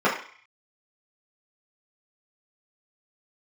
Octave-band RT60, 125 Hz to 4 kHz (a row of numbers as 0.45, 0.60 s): 0.30, 0.40, 0.40, 0.55, 0.65, 0.55 s